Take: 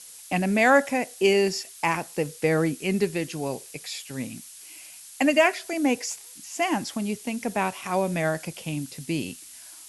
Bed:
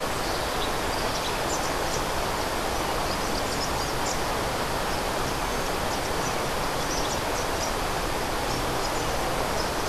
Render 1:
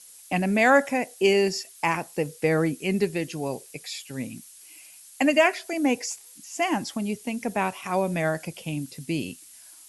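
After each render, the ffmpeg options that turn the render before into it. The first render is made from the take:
-af "afftdn=nr=6:nf=-45"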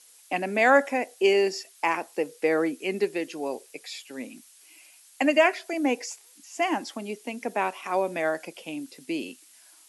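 -af "highpass=f=270:w=0.5412,highpass=f=270:w=1.3066,highshelf=f=5.8k:g=-8.5"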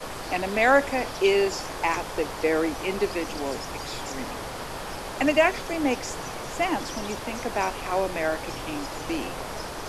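-filter_complex "[1:a]volume=-7.5dB[a];[0:a][a]amix=inputs=2:normalize=0"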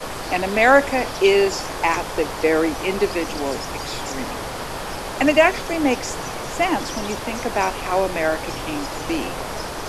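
-af "volume=5.5dB"

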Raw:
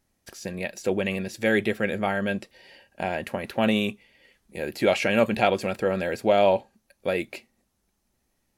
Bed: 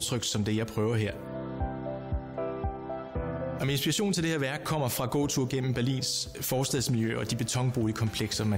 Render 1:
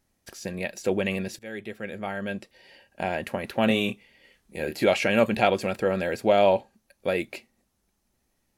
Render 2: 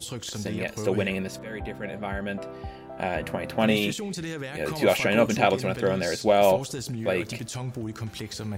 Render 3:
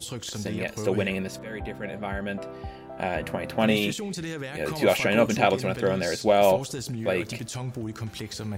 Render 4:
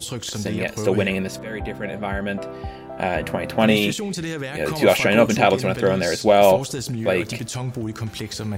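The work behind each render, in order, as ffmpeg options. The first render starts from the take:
-filter_complex "[0:a]asettb=1/sr,asplit=3[a][b][c];[a]atrim=end=3.674[d];[b]atrim=start=3.67:end=4.84,asetpts=PTS-STARTPTS,afade=t=in:d=0.004:c=qsin,afade=t=out:st=1.166:d=0.004:c=qsin,asplit=2[e][f];[f]adelay=26,volume=-6.5dB[g];[e][g]amix=inputs=2:normalize=0,atrim=end_sample=51597[h];[c]atrim=start=4.836[i];[d][h]acrossfade=d=0.004:c1=hsin:c2=qsin[j];[j][i]acrossfade=d=0.004:c1=qsin:c2=hsin,asplit=2[k][l];[k]atrim=end=1.39,asetpts=PTS-STARTPTS,afade=t=out:st=1.386:d=0.004:c=hsin:silence=0.105925[m];[l]atrim=start=1.39,asetpts=PTS-STARTPTS,afade=t=in:d=1.7:silence=0.105925[n];[m][n]concat=n=2:v=0:a=1"
-filter_complex "[1:a]volume=-5dB[a];[0:a][a]amix=inputs=2:normalize=0"
-af anull
-af "volume=5.5dB,alimiter=limit=-2dB:level=0:latency=1"

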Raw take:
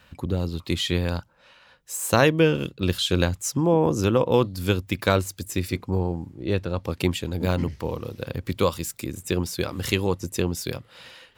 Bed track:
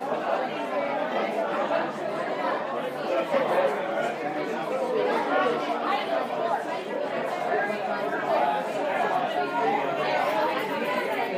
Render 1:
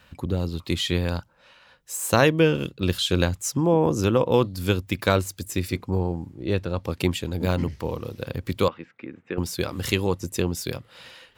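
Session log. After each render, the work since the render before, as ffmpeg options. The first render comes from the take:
-filter_complex "[0:a]asettb=1/sr,asplit=3[a][b][c];[a]atrim=end=8.684[d];[b]atrim=start=8.68:end=9.38,asetpts=PTS-STARTPTS,afade=t=in:d=0.004:c=qsin,afade=t=out:st=0.696:d=0.004:c=qsin,highpass=280,equalizer=f=370:t=q:w=4:g=-5,equalizer=f=610:t=q:w=4:g=-7,equalizer=f=1k:t=q:w=4:g=-5,lowpass=f=2.2k:w=0.5412,lowpass=f=2.2k:w=1.3066[e];[c]atrim=start=9.376[f];[d][e]acrossfade=d=0.004:c1=hsin:c2=qsin[g];[g][f]acrossfade=d=0.004:c1=qsin:c2=hsin"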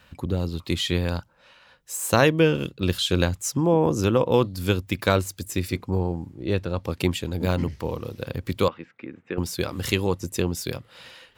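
-af anull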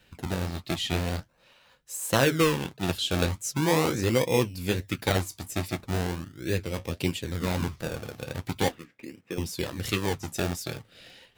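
-filter_complex "[0:a]acrossover=split=1400[a][b];[a]acrusher=samples=30:mix=1:aa=0.000001:lfo=1:lforange=30:lforate=0.4[c];[c][b]amix=inputs=2:normalize=0,flanger=delay=5.9:depth=9.9:regen=-51:speed=1.4:shape=sinusoidal"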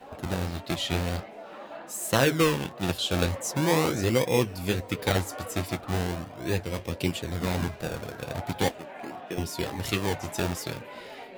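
-filter_complex "[1:a]volume=-16dB[a];[0:a][a]amix=inputs=2:normalize=0"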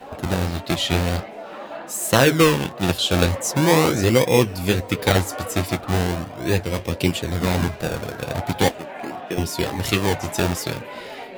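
-af "volume=7.5dB,alimiter=limit=-2dB:level=0:latency=1"

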